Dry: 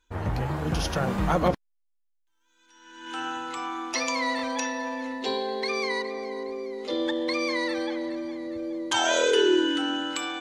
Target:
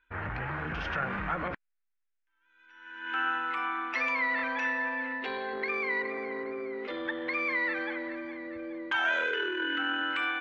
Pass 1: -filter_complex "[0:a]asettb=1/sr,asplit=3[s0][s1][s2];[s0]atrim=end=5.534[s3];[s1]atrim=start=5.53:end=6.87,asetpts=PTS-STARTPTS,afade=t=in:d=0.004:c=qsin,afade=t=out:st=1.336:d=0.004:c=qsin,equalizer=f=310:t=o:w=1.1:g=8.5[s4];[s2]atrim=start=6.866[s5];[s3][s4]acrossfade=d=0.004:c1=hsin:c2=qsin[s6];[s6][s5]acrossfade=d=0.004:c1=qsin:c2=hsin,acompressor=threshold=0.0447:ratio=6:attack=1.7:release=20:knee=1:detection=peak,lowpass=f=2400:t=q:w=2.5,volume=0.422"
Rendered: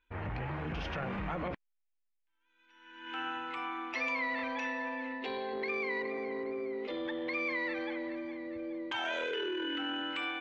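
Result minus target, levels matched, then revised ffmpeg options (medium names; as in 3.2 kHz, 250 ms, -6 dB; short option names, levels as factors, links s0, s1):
2 kHz band -3.0 dB
-filter_complex "[0:a]asettb=1/sr,asplit=3[s0][s1][s2];[s0]atrim=end=5.534[s3];[s1]atrim=start=5.53:end=6.87,asetpts=PTS-STARTPTS,afade=t=in:d=0.004:c=qsin,afade=t=out:st=1.336:d=0.004:c=qsin,equalizer=f=310:t=o:w=1.1:g=8.5[s4];[s2]atrim=start=6.866[s5];[s3][s4]acrossfade=d=0.004:c1=hsin:c2=qsin[s6];[s6][s5]acrossfade=d=0.004:c1=qsin:c2=hsin,acompressor=threshold=0.0447:ratio=6:attack=1.7:release=20:knee=1:detection=peak,lowpass=f=2400:t=q:w=2.5,equalizer=f=1500:t=o:w=0.87:g=11.5,volume=0.422"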